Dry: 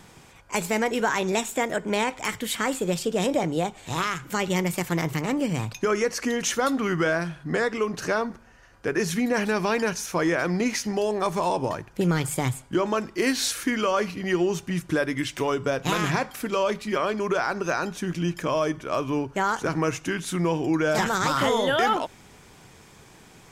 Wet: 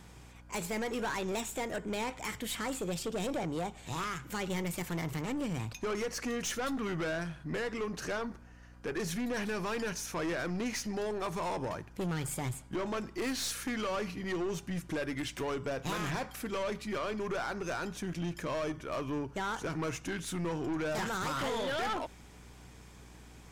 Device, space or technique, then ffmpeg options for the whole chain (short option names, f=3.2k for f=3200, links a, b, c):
valve amplifier with mains hum: -af "aeval=exprs='(tanh(17.8*val(0)+0.25)-tanh(0.25))/17.8':c=same,aeval=exprs='val(0)+0.00398*(sin(2*PI*60*n/s)+sin(2*PI*2*60*n/s)/2+sin(2*PI*3*60*n/s)/3+sin(2*PI*4*60*n/s)/4+sin(2*PI*5*60*n/s)/5)':c=same,volume=-5.5dB"